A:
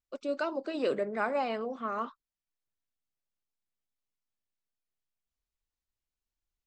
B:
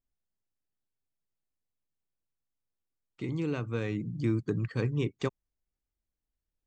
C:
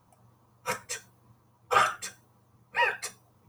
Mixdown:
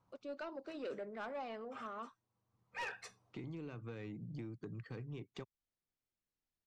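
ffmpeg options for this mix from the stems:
-filter_complex "[0:a]volume=0.282,asplit=2[s0][s1];[1:a]highpass=f=97:w=0.5412,highpass=f=97:w=1.3066,acompressor=threshold=0.01:ratio=6,adelay=150,volume=0.75[s2];[2:a]volume=0.237[s3];[s1]apad=whole_len=153623[s4];[s3][s4]sidechaincompress=threshold=0.001:ratio=10:attack=47:release=619[s5];[s0][s2][s5]amix=inputs=3:normalize=0,lowpass=5700,asoftclip=type=tanh:threshold=0.015"

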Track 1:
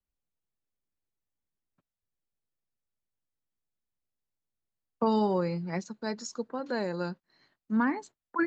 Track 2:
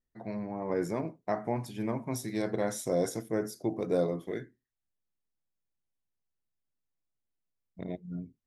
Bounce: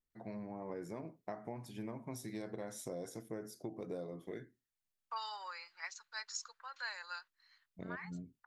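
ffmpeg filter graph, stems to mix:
-filter_complex "[0:a]highpass=f=1200:w=0.5412,highpass=f=1200:w=1.3066,adelay=100,volume=0.841[s0];[1:a]acompressor=threshold=0.02:ratio=6,volume=0.501,asplit=2[s1][s2];[s2]apad=whole_len=377683[s3];[s0][s3]sidechaincompress=threshold=0.00178:ratio=4:attack=16:release=126[s4];[s4][s1]amix=inputs=2:normalize=0"

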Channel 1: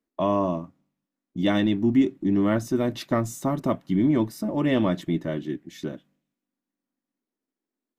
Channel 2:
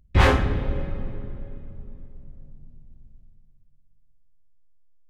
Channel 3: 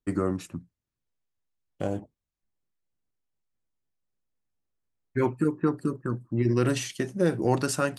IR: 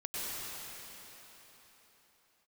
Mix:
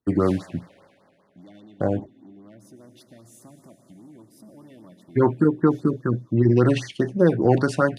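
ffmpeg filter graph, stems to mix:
-filter_complex "[0:a]acompressor=threshold=0.0316:ratio=5,asoftclip=type=tanh:threshold=0.0376,volume=0.188,asplit=2[s0][s1];[s1]volume=0.299[s2];[1:a]highpass=650,alimiter=limit=0.15:level=0:latency=1:release=114,aeval=exprs='max(val(0),0)':c=same,adelay=50,volume=0.335[s3];[2:a]lowpass=2900,acontrast=52,volume=1.12[s4];[3:a]atrim=start_sample=2205[s5];[s2][s5]afir=irnorm=-1:irlink=0[s6];[s0][s3][s4][s6]amix=inputs=4:normalize=0,highpass=f=59:w=0.5412,highpass=f=59:w=1.3066,equalizer=f=10000:t=o:w=0.31:g=10.5,afftfilt=real='re*(1-between(b*sr/1024,970*pow(3100/970,0.5+0.5*sin(2*PI*5*pts/sr))/1.41,970*pow(3100/970,0.5+0.5*sin(2*PI*5*pts/sr))*1.41))':imag='im*(1-between(b*sr/1024,970*pow(3100/970,0.5+0.5*sin(2*PI*5*pts/sr))/1.41,970*pow(3100/970,0.5+0.5*sin(2*PI*5*pts/sr))*1.41))':win_size=1024:overlap=0.75"

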